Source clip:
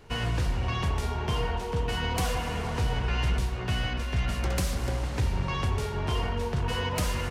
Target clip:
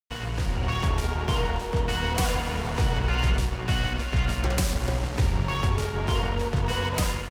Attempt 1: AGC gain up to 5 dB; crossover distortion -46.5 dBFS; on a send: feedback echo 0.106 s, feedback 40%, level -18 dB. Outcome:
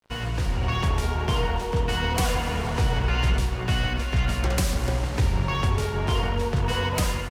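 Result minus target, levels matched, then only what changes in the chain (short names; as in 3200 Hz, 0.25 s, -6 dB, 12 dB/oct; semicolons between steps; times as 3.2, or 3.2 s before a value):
crossover distortion: distortion -12 dB
change: crossover distortion -35 dBFS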